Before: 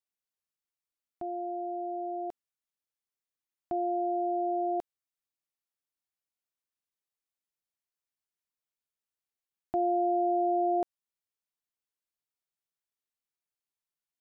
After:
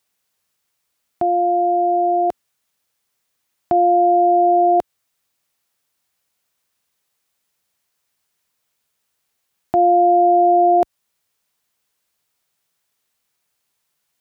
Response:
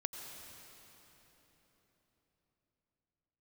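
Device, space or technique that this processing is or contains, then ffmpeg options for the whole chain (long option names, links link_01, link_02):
mastering chain: -af "highpass=51,equalizer=frequency=320:width_type=o:width=0.54:gain=-4,acompressor=threshold=-33dB:ratio=2,alimiter=level_in=26.5dB:limit=-1dB:release=50:level=0:latency=1,volume=-6.5dB"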